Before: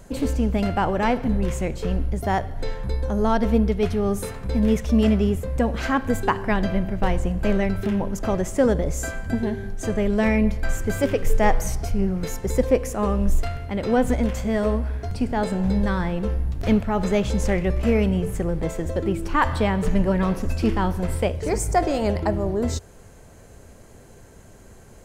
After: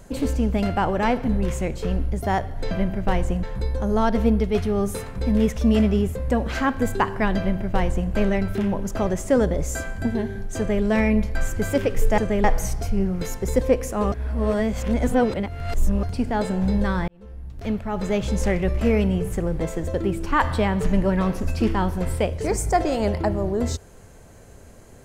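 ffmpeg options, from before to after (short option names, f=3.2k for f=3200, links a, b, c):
-filter_complex "[0:a]asplit=8[a][b][c][d][e][f][g][h];[a]atrim=end=2.712[i];[b]atrim=start=6.658:end=7.382[j];[c]atrim=start=2.708:end=11.462[k];[d]atrim=start=9.848:end=10.112[l];[e]atrim=start=11.458:end=13.142[m];[f]atrim=start=13.138:end=15.052,asetpts=PTS-STARTPTS,areverse[n];[g]atrim=start=15.048:end=16.1,asetpts=PTS-STARTPTS,afade=t=out:st=1.048:d=0.004:c=hsin[o];[h]atrim=start=16.1,asetpts=PTS-STARTPTS,afade=t=in:d=1.36[p];[i][j]acrossfade=d=0.004:c1=hsin:c2=hsin[q];[q][k]acrossfade=d=0.004:c1=hsin:c2=hsin[r];[r][l]acrossfade=d=0.004:c1=hsin:c2=hsin[s];[s][m]acrossfade=d=0.004:c1=hsin:c2=hsin[t];[t][n]acrossfade=d=0.004:c1=hsin:c2=hsin[u];[o][p]concat=n=2:v=0:a=1[v];[u][v]acrossfade=d=0.004:c1=hsin:c2=hsin"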